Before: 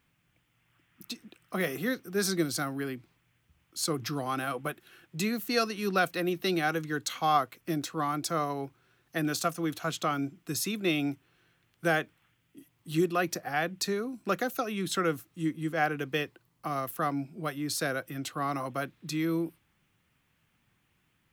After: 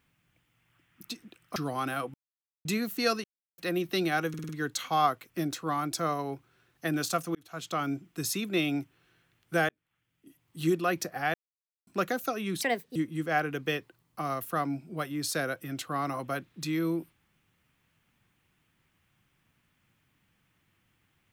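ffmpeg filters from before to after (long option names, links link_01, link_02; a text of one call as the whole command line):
ffmpeg -i in.wav -filter_complex "[0:a]asplit=16[link_01][link_02][link_03][link_04][link_05][link_06][link_07][link_08][link_09][link_10][link_11][link_12][link_13][link_14][link_15][link_16];[link_01]atrim=end=1.562[link_17];[link_02]atrim=start=4.068:end=4.65,asetpts=PTS-STARTPTS,afade=type=out:start_time=0.578:duration=0.004:curve=hsin[link_18];[link_03]atrim=start=4.65:end=5.16,asetpts=PTS-STARTPTS,volume=0[link_19];[link_04]atrim=start=5.16:end=5.75,asetpts=PTS-STARTPTS,afade=type=in:duration=0.004:curve=hsin,afade=type=out:start_time=0.586:duration=0.004:curve=hsin[link_20];[link_05]atrim=start=5.75:end=6.09,asetpts=PTS-STARTPTS,volume=0[link_21];[link_06]atrim=start=6.09:end=6.852,asetpts=PTS-STARTPTS,afade=type=in:duration=0.004:curve=hsin[link_22];[link_07]atrim=start=6.798:end=6.852[link_23];[link_08]atrim=start=6.798:end=6.852[link_24];[link_09]atrim=start=6.798:end=6.852[link_25];[link_10]atrim=start=6.798:end=9.66,asetpts=PTS-STARTPTS,afade=type=out:start_time=2.858:duration=0.004:curve=hsin[link_26];[link_11]atrim=start=9.66:end=12,asetpts=PTS-STARTPTS,afade=type=in:duration=0.51,afade=type=out:start_time=2.336:duration=0.004:curve=hsin[link_27];[link_12]atrim=start=12:end=13.65,asetpts=PTS-STARTPTS,afade=type=in:duration=0.93,afade=type=out:start_time=1.646:duration=0.004:curve=hsin[link_28];[link_13]atrim=start=13.65:end=14.18,asetpts=PTS-STARTPTS,volume=0[link_29];[link_14]atrim=start=14.18:end=14.924,asetpts=PTS-STARTPTS,afade=type=in:duration=0.004:curve=hsin[link_30];[link_15]atrim=start=14.92:end=15.42,asetpts=PTS-STARTPTS,asetrate=63504,aresample=44100,atrim=end_sample=15312,asetpts=PTS-STARTPTS[link_31];[link_16]atrim=start=15.416[link_32];[link_18][link_19][link_20][link_21][link_22]concat=n=5:v=0:a=1[link_33];[link_17][link_33]acrossfade=duration=0.004:curve1=hsin:curve2=hsin[link_34];[link_34][link_23]acrossfade=duration=0.004:curve1=hsin:curve2=hsin[link_35];[link_35][link_24]acrossfade=duration=0.004:curve1=hsin:curve2=hsin[link_36];[link_36][link_25]acrossfade=duration=0.004:curve1=hsin:curve2=hsin[link_37];[link_26][link_27][link_28][link_29][link_30]concat=n=5:v=0:a=1[link_38];[link_37][link_38]acrossfade=duration=0.004:curve1=hsin:curve2=hsin[link_39];[link_39][link_31]acrossfade=duration=0.004:curve1=hsin:curve2=hsin[link_40];[link_40][link_32]acrossfade=duration=0.004:curve1=hsin:curve2=hsin" out.wav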